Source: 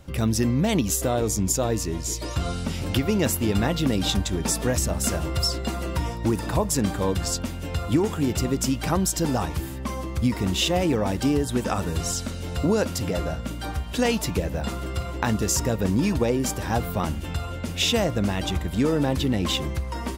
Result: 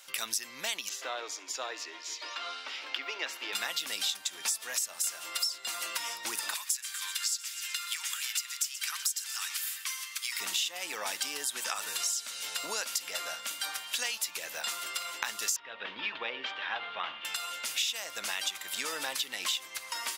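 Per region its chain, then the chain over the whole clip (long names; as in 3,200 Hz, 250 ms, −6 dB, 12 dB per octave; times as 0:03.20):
0:00.89–0:03.53: Chebyshev high-pass filter 260 Hz, order 6 + high-frequency loss of the air 250 metres + repeating echo 70 ms, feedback 51%, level −21 dB
0:06.54–0:10.40: high-pass filter 1,400 Hz 24 dB per octave + repeating echo 124 ms, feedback 51%, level −15 dB
0:15.56–0:17.25: elliptic low-pass filter 3,400 Hz, stop band 80 dB + hum removal 47.7 Hz, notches 26
whole clip: high-pass filter 1,300 Hz 12 dB per octave; high-shelf EQ 2,300 Hz +9.5 dB; downward compressor 6 to 1, threshold −30 dBFS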